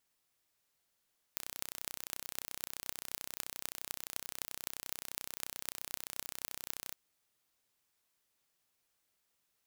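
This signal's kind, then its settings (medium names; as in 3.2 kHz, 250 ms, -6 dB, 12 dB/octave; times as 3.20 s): pulse train 31.5 per s, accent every 8, -8.5 dBFS 5.58 s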